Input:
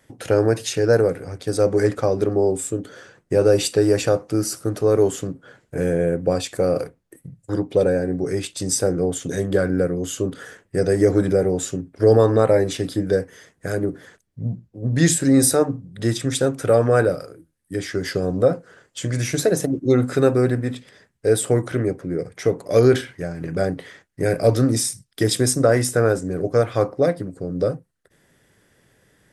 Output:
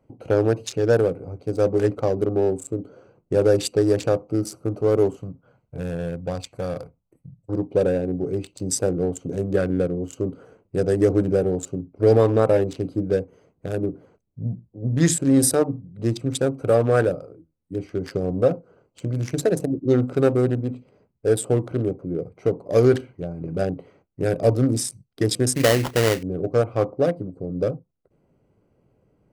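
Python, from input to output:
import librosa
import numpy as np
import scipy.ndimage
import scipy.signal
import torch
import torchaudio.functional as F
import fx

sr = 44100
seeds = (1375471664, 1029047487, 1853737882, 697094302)

y = fx.wiener(x, sr, points=25)
y = fx.peak_eq(y, sr, hz=360.0, db=-11.5, octaves=1.4, at=(5.17, 7.39))
y = fx.sample_hold(y, sr, seeds[0], rate_hz=2400.0, jitter_pct=20, at=(25.55, 26.23))
y = y * 10.0 ** (-1.5 / 20.0)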